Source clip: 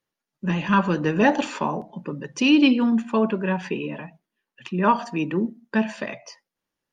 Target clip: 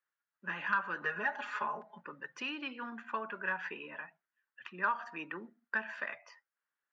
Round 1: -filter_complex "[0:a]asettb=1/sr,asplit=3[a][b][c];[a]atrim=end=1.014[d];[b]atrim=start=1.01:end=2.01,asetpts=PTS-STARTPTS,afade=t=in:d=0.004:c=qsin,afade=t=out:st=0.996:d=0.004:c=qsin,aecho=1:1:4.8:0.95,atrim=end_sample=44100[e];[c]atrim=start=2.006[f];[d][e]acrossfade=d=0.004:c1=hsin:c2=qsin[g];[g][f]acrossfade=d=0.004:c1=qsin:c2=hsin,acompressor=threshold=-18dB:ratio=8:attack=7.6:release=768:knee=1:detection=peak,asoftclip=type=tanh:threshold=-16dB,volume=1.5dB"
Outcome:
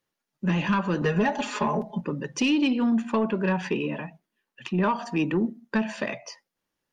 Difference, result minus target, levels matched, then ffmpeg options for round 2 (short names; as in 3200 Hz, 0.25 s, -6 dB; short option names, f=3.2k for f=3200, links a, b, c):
2000 Hz band -9.0 dB
-filter_complex "[0:a]asettb=1/sr,asplit=3[a][b][c];[a]atrim=end=1.014[d];[b]atrim=start=1.01:end=2.01,asetpts=PTS-STARTPTS,afade=t=in:d=0.004:c=qsin,afade=t=out:st=0.996:d=0.004:c=qsin,aecho=1:1:4.8:0.95,atrim=end_sample=44100[e];[c]atrim=start=2.006[f];[d][e]acrossfade=d=0.004:c1=hsin:c2=qsin[g];[g][f]acrossfade=d=0.004:c1=qsin:c2=hsin,acompressor=threshold=-18dB:ratio=8:attack=7.6:release=768:knee=1:detection=peak,bandpass=f=1.5k:t=q:w=3.1:csg=0,asoftclip=type=tanh:threshold=-16dB,volume=1.5dB"